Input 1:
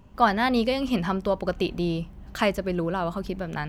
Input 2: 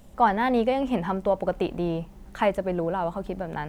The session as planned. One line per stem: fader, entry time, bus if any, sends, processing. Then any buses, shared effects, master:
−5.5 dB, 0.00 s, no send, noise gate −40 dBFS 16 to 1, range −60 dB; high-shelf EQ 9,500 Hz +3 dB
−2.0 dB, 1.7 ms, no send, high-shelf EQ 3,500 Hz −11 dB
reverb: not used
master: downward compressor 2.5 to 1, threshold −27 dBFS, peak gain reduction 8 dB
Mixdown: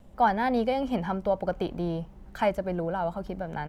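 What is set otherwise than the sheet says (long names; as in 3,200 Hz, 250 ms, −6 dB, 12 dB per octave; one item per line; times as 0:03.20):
stem 1 −5.5 dB → −13.0 dB
master: missing downward compressor 2.5 to 1, threshold −27 dBFS, peak gain reduction 8 dB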